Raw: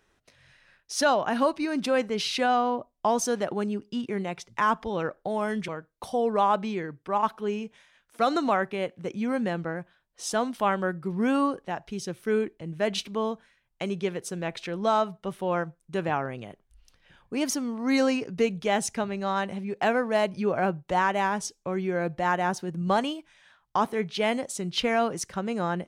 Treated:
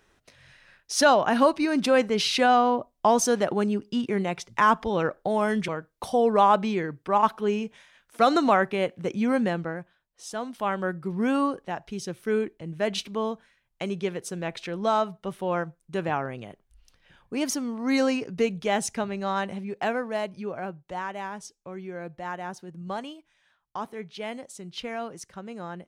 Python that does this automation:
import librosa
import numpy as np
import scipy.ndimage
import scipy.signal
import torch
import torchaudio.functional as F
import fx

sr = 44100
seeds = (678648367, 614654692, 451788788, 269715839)

y = fx.gain(x, sr, db=fx.line((9.37, 4.0), (10.28, -7.5), (10.9, 0.0), (19.5, 0.0), (20.71, -9.0)))